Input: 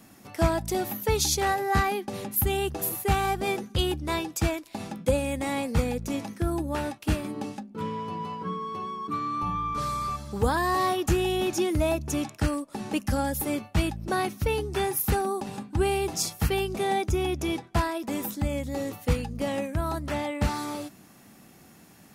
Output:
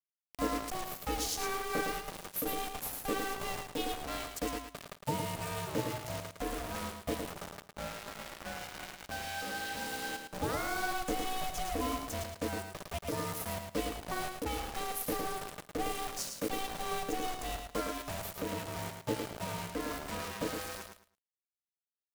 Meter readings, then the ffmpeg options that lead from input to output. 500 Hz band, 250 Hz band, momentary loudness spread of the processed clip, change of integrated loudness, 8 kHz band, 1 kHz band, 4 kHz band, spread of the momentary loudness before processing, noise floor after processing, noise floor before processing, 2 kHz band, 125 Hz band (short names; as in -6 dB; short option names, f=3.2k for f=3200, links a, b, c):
-10.0 dB, -10.5 dB, 8 LU, -9.0 dB, -7.0 dB, -8.5 dB, -6.0 dB, 8 LU, under -85 dBFS, -53 dBFS, -6.0 dB, -14.0 dB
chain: -af "acrusher=bits=4:mix=0:aa=0.000001,aeval=exprs='val(0)*sin(2*PI*380*n/s)':c=same,aecho=1:1:109|218|327:0.501|0.105|0.0221,volume=-8dB"